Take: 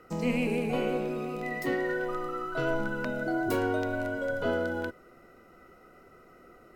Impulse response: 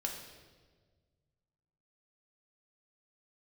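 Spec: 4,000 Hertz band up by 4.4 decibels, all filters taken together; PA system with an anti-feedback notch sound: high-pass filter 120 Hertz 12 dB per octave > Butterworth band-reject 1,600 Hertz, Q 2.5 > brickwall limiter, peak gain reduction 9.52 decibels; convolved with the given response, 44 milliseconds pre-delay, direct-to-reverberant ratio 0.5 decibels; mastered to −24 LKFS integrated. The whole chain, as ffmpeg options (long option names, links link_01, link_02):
-filter_complex "[0:a]equalizer=frequency=4000:width_type=o:gain=6.5,asplit=2[link_01][link_02];[1:a]atrim=start_sample=2205,adelay=44[link_03];[link_02][link_03]afir=irnorm=-1:irlink=0,volume=-1.5dB[link_04];[link_01][link_04]amix=inputs=2:normalize=0,highpass=120,asuperstop=centerf=1600:order=8:qfactor=2.5,volume=8.5dB,alimiter=limit=-15.5dB:level=0:latency=1"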